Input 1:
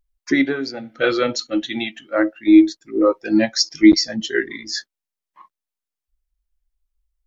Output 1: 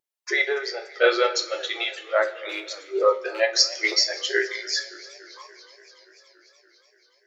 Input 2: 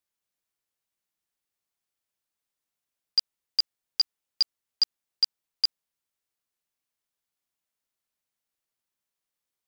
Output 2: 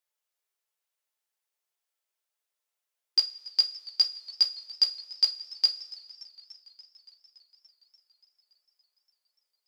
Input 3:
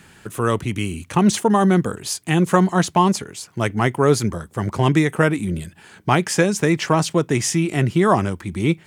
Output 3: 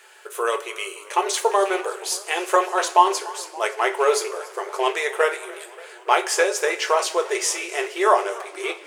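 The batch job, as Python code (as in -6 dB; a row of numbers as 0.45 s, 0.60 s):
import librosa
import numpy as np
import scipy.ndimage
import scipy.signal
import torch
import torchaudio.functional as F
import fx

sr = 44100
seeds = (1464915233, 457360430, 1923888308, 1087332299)

y = fx.rattle_buzz(x, sr, strikes_db=-17.0, level_db=-25.0)
y = fx.brickwall_highpass(y, sr, low_hz=360.0)
y = fx.rev_double_slope(y, sr, seeds[0], early_s=0.26, late_s=1.8, knee_db=-18, drr_db=4.0)
y = fx.echo_warbled(y, sr, ms=287, feedback_pct=74, rate_hz=2.8, cents=121, wet_db=-21)
y = F.gain(torch.from_numpy(y), -1.0).numpy()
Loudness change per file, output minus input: -5.0 LU, +1.5 LU, -3.0 LU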